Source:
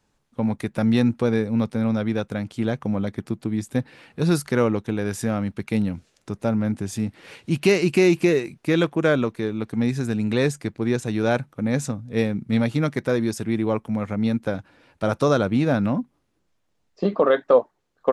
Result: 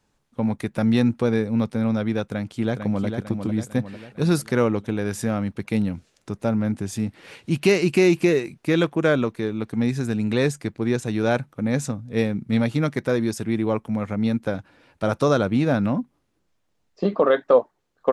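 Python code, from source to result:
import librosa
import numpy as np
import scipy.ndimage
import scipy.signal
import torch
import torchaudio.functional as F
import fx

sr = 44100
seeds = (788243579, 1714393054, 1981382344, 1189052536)

y = fx.echo_throw(x, sr, start_s=2.27, length_s=0.79, ms=450, feedback_pct=50, wet_db=-6.5)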